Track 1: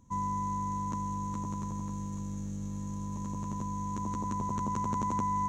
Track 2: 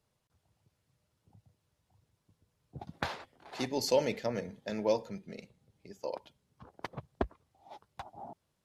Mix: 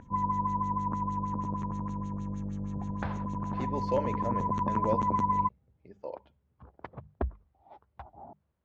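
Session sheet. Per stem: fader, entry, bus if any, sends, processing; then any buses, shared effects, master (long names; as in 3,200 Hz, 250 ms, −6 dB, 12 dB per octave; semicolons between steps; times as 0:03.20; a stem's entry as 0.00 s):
+1.5 dB, 0.00 s, no send, parametric band 3,800 Hz −6 dB 1.1 octaves; upward compression, threshold −47 dBFS; auto-filter low-pass sine 6.4 Hz 580–4,100 Hz
−2.0 dB, 0.00 s, no send, low-pass filter 1,800 Hz 12 dB per octave; parametric band 66 Hz +14 dB 0.78 octaves; mains-hum notches 50/100/150/200 Hz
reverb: not used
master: no processing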